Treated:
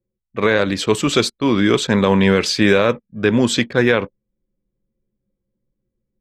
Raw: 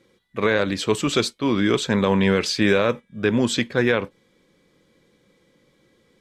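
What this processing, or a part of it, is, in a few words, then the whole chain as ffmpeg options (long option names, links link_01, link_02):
voice memo with heavy noise removal: -af "anlmdn=0.398,dynaudnorm=framelen=230:gausssize=3:maxgain=3.5dB,volume=2dB"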